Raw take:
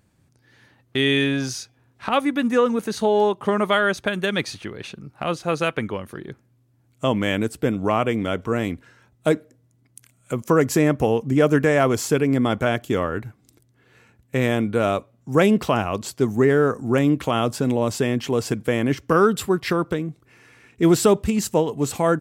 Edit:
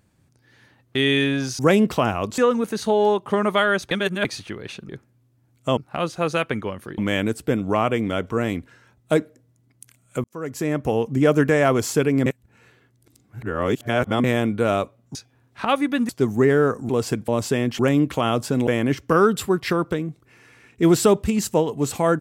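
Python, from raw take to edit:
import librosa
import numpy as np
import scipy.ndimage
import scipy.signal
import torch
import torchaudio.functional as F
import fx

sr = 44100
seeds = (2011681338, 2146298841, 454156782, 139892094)

y = fx.edit(x, sr, fx.swap(start_s=1.59, length_s=0.94, other_s=15.3, other_length_s=0.79),
    fx.reverse_span(start_s=4.06, length_s=0.34),
    fx.move(start_s=6.25, length_s=0.88, to_s=5.04),
    fx.fade_in_span(start_s=10.39, length_s=0.87),
    fx.reverse_span(start_s=12.41, length_s=1.98),
    fx.swap(start_s=16.89, length_s=0.88, other_s=18.28, other_length_s=0.39), tone=tone)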